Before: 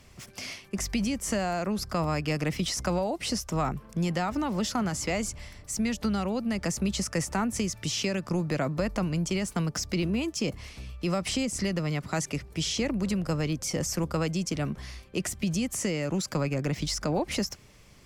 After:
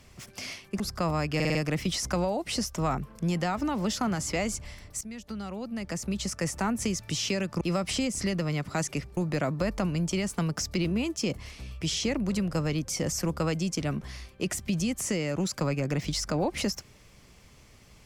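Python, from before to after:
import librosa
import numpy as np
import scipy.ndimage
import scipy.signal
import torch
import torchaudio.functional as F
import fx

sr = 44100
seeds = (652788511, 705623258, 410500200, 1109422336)

y = fx.edit(x, sr, fx.cut(start_s=0.8, length_s=0.94),
    fx.stutter(start_s=2.29, slice_s=0.05, count=5),
    fx.fade_in_from(start_s=5.75, length_s=1.75, floor_db=-14.5),
    fx.move(start_s=10.99, length_s=1.56, to_s=8.35), tone=tone)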